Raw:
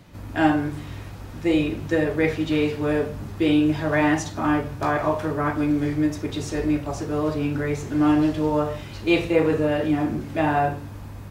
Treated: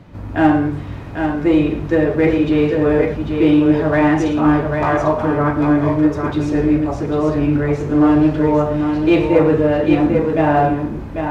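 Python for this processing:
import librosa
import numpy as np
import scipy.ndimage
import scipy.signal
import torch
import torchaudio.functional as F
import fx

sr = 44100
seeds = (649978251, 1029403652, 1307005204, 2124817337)

p1 = fx.lowpass(x, sr, hz=1400.0, slope=6)
p2 = np.clip(p1, -10.0 ** (-17.5 / 20.0), 10.0 ** (-17.5 / 20.0))
p3 = p1 + F.gain(torch.from_numpy(p2), -6.5).numpy()
p4 = fx.echo_multitap(p3, sr, ms=(112, 795, 797), db=(-14.0, -5.5, -18.5))
y = F.gain(torch.from_numpy(p4), 4.0).numpy()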